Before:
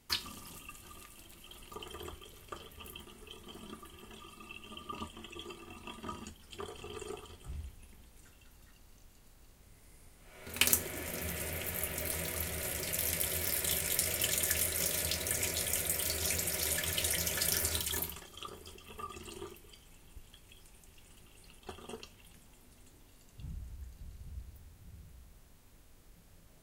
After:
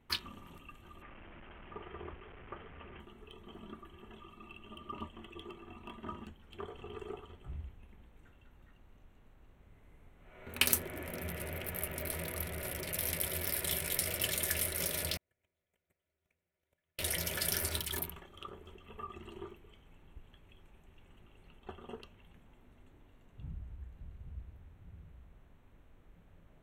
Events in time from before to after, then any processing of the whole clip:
1.02–3 delta modulation 16 kbps, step -45 dBFS
15.17–16.99 gate -28 dBFS, range -47 dB
whole clip: Wiener smoothing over 9 samples; bell 7000 Hz -8.5 dB 0.41 oct

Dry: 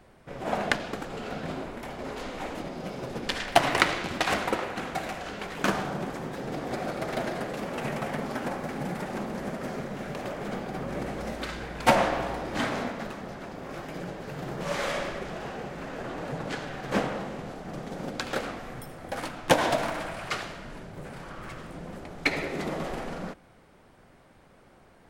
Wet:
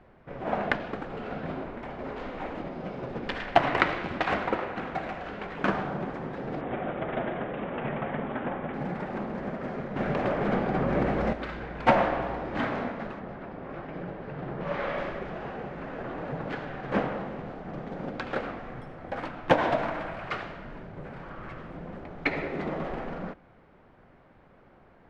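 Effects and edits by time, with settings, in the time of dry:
6.61–8.74 careless resampling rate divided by 6×, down none, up filtered
9.96–11.33 gain +7.5 dB
13.19–14.98 air absorption 130 m
whole clip: LPF 2300 Hz 12 dB/oct

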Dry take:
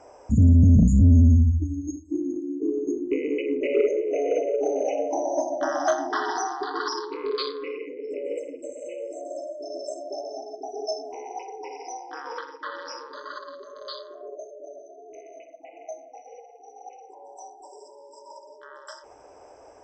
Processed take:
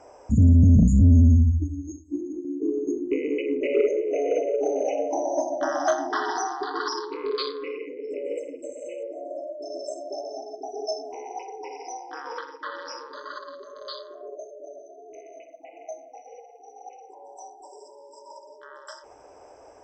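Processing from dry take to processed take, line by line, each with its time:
1.68–2.45 ensemble effect
9.03–9.62 LPF 2300 Hz

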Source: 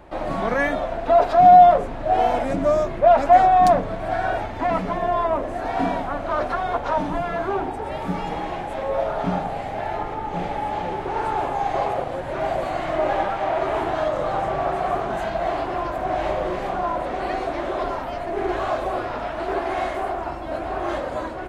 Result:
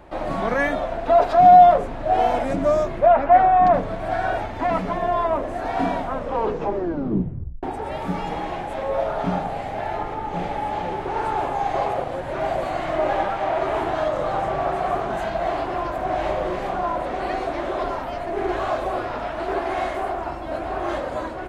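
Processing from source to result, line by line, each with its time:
3.06–3.74 Chebyshev low-pass 2100 Hz
6.01 tape stop 1.62 s

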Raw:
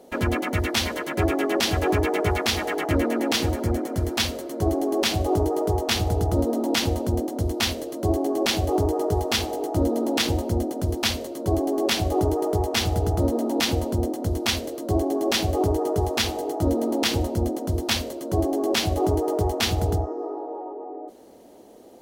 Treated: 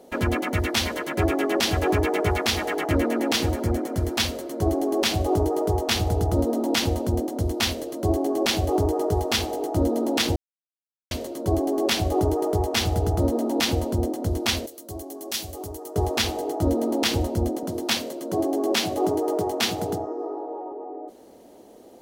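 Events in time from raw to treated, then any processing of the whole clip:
10.36–11.11 mute
14.66–15.96 pre-emphasis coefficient 0.8
17.63–20.72 HPF 140 Hz 24 dB/oct

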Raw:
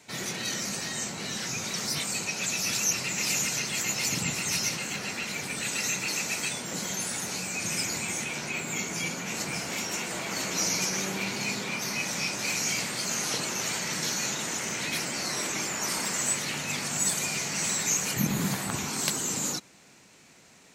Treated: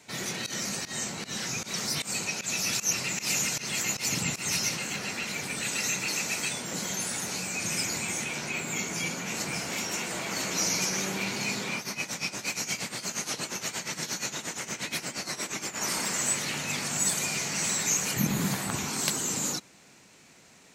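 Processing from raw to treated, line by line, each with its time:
0.46–4.61 pump 154 bpm, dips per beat 1, -21 dB, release 0.121 s
11.78–15.81 tremolo 8.5 Hz, depth 80%

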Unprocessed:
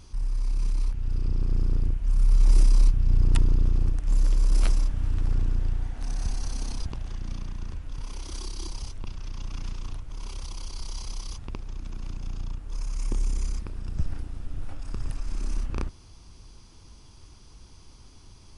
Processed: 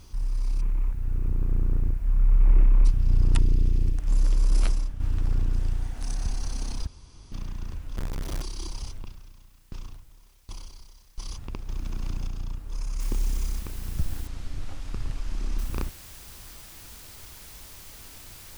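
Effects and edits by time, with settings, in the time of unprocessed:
0.61–2.85 steep low-pass 2500 Hz
3.39–3.98 band shelf 950 Hz -8 dB
4.59–5 fade out, to -9 dB
5.53–6.16 high shelf 5600 Hz +9.5 dB
6.87–7.32 room tone
7.96–8.42 half-waves squared off
8.95–11.18 dB-ramp tremolo decaying 1.3 Hz, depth 30 dB
11.69–12.27 gain +4 dB
13 noise floor step -66 dB -47 dB
14.27–15.59 air absorption 74 m

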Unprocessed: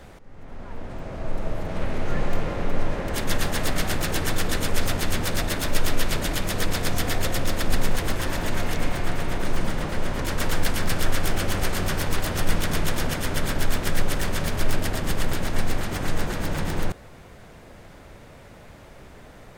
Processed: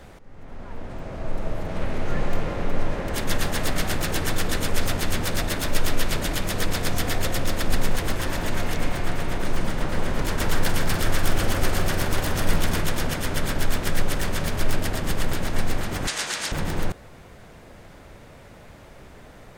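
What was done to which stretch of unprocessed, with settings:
9.66–12.82 echo with dull and thin repeats by turns 0.146 s, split 1800 Hz, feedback 53%, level -4 dB
16.07–16.52 weighting filter ITU-R 468

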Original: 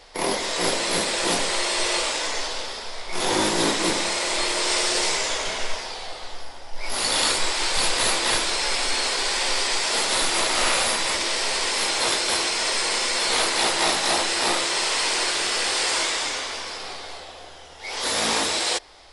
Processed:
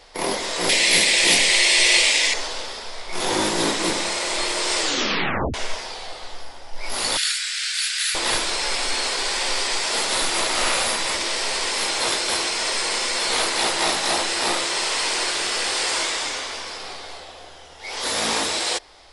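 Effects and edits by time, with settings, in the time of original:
0.69–2.34 resonant high shelf 1700 Hz +7 dB, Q 3
4.77 tape stop 0.77 s
7.17–8.15 elliptic high-pass 1500 Hz, stop band 50 dB

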